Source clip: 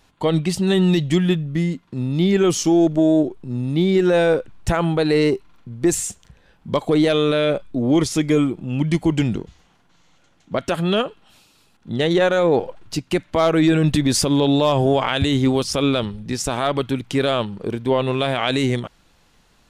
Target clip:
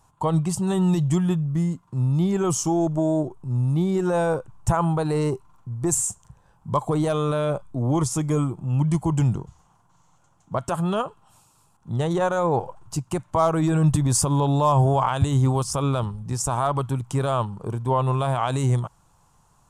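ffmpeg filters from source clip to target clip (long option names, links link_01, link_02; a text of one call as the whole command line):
ffmpeg -i in.wav -af "equalizer=frequency=125:width_type=o:width=1:gain=10,equalizer=frequency=250:width_type=o:width=1:gain=-6,equalizer=frequency=500:width_type=o:width=1:gain=-4,equalizer=frequency=1000:width_type=o:width=1:gain=12,equalizer=frequency=2000:width_type=o:width=1:gain=-11,equalizer=frequency=4000:width_type=o:width=1:gain=-10,equalizer=frequency=8000:width_type=o:width=1:gain=9,volume=-4.5dB" out.wav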